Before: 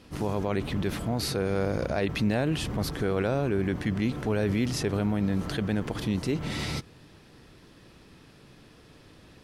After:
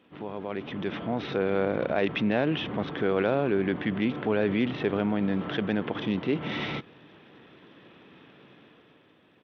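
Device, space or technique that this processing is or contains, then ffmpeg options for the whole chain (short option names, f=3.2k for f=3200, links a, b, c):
Bluetooth headset: -af "highpass=200,dynaudnorm=f=150:g=11:m=9dB,aresample=8000,aresample=44100,volume=-6dB" -ar 32000 -c:a sbc -b:a 64k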